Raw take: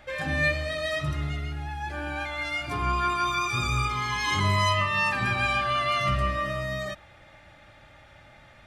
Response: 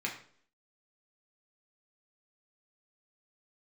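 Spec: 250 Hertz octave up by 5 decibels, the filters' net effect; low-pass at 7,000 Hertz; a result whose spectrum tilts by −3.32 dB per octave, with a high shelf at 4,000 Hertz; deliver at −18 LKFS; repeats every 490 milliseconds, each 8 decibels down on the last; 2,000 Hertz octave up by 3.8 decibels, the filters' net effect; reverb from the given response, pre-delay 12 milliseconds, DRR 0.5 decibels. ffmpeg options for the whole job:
-filter_complex "[0:a]lowpass=7000,equalizer=frequency=250:width_type=o:gain=7,equalizer=frequency=2000:width_type=o:gain=5.5,highshelf=frequency=4000:gain=-4.5,aecho=1:1:490|980|1470|1960|2450:0.398|0.159|0.0637|0.0255|0.0102,asplit=2[link_01][link_02];[1:a]atrim=start_sample=2205,adelay=12[link_03];[link_02][link_03]afir=irnorm=-1:irlink=0,volume=-5dB[link_04];[link_01][link_04]amix=inputs=2:normalize=0,volume=2.5dB"

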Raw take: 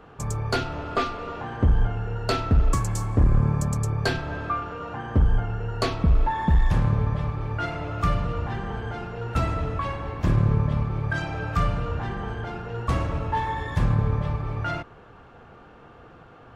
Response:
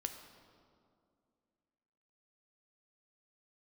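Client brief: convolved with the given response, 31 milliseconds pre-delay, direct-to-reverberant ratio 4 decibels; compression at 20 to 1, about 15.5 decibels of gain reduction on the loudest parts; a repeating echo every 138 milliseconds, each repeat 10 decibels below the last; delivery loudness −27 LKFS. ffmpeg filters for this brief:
-filter_complex "[0:a]acompressor=threshold=-30dB:ratio=20,aecho=1:1:138|276|414|552:0.316|0.101|0.0324|0.0104,asplit=2[link_01][link_02];[1:a]atrim=start_sample=2205,adelay=31[link_03];[link_02][link_03]afir=irnorm=-1:irlink=0,volume=-3dB[link_04];[link_01][link_04]amix=inputs=2:normalize=0,volume=7.5dB"

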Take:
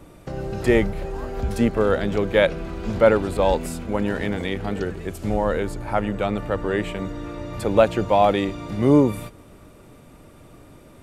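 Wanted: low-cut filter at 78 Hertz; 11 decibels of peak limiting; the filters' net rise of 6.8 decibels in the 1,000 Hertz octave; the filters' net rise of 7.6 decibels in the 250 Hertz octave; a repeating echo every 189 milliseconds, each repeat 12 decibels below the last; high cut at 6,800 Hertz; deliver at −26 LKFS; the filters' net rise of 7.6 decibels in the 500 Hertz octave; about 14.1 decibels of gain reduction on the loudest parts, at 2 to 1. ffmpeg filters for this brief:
ffmpeg -i in.wav -af "highpass=78,lowpass=6800,equalizer=frequency=250:width_type=o:gain=7.5,equalizer=frequency=500:width_type=o:gain=5.5,equalizer=frequency=1000:width_type=o:gain=6.5,acompressor=threshold=-29dB:ratio=2,alimiter=limit=-20dB:level=0:latency=1,aecho=1:1:189|378|567:0.251|0.0628|0.0157,volume=4dB" out.wav

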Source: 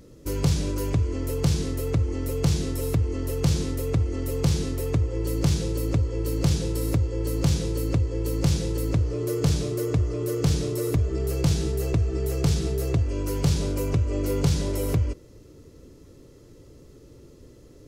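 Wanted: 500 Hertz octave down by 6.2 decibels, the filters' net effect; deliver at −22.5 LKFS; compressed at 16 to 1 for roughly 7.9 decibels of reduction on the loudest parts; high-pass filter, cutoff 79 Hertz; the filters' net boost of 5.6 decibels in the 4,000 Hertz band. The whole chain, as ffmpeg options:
ffmpeg -i in.wav -af "highpass=79,equalizer=frequency=500:width_type=o:gain=-8,equalizer=frequency=4000:width_type=o:gain=7,acompressor=threshold=-25dB:ratio=16,volume=9dB" out.wav

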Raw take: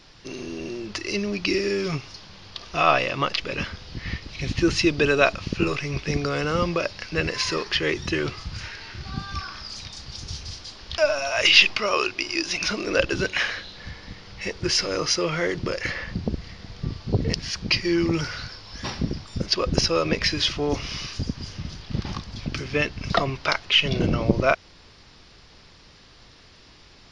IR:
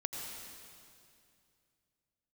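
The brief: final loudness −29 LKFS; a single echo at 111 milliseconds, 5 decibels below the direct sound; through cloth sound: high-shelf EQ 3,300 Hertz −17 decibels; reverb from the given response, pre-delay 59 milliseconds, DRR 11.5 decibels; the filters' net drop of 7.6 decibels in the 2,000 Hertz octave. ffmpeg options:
-filter_complex "[0:a]equalizer=frequency=2000:width_type=o:gain=-3.5,aecho=1:1:111:0.562,asplit=2[link_01][link_02];[1:a]atrim=start_sample=2205,adelay=59[link_03];[link_02][link_03]afir=irnorm=-1:irlink=0,volume=-13dB[link_04];[link_01][link_04]amix=inputs=2:normalize=0,highshelf=frequency=3300:gain=-17,volume=-2.5dB"

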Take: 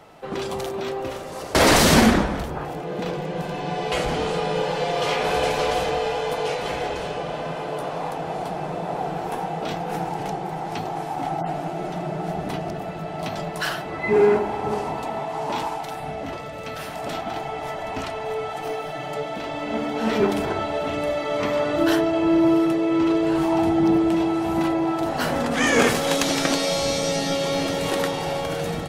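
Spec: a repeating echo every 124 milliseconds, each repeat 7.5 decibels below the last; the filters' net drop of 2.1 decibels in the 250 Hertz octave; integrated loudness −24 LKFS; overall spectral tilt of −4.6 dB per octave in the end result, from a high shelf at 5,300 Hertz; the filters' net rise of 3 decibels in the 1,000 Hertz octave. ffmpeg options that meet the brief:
ffmpeg -i in.wav -af "equalizer=frequency=250:width_type=o:gain=-3.5,equalizer=frequency=1000:width_type=o:gain=4.5,highshelf=frequency=5300:gain=-4.5,aecho=1:1:124|248|372|496|620:0.422|0.177|0.0744|0.0312|0.0131,volume=-1.5dB" out.wav

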